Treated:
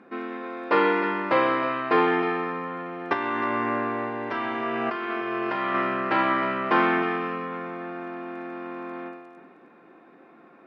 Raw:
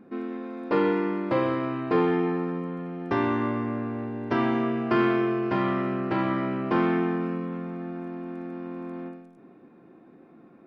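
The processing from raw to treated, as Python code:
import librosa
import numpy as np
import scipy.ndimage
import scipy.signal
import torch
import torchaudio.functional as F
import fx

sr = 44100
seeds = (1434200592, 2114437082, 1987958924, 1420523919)

y = fx.over_compress(x, sr, threshold_db=-29.0, ratio=-1.0, at=(3.13, 5.76))
y = fx.bandpass_q(y, sr, hz=1800.0, q=0.58)
y = y + 10.0 ** (-13.5 / 20.0) * np.pad(y, (int(312 * sr / 1000.0), 0))[:len(y)]
y = F.gain(torch.from_numpy(y), 9.0).numpy()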